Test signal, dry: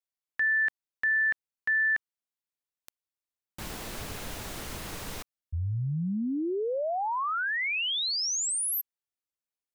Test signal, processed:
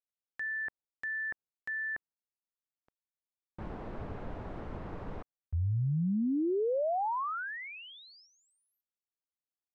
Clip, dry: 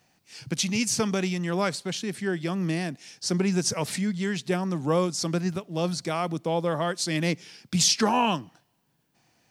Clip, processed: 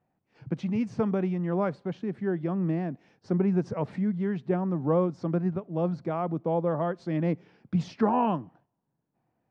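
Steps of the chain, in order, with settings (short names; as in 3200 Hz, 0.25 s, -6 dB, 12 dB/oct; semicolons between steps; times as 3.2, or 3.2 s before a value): LPF 1000 Hz 12 dB/oct; gate -60 dBFS, range -7 dB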